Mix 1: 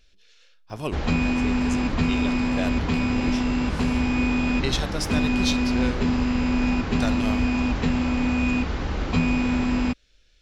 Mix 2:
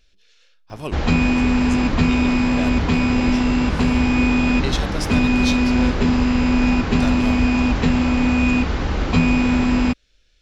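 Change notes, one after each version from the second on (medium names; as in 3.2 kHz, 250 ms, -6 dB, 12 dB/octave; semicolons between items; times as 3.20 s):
background +5.5 dB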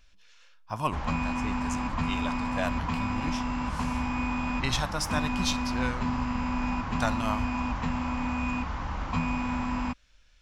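background -12.0 dB; master: add fifteen-band graphic EQ 400 Hz -12 dB, 1 kHz +11 dB, 4 kHz -5 dB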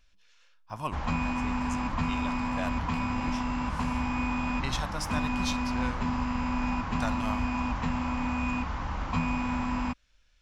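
speech -5.0 dB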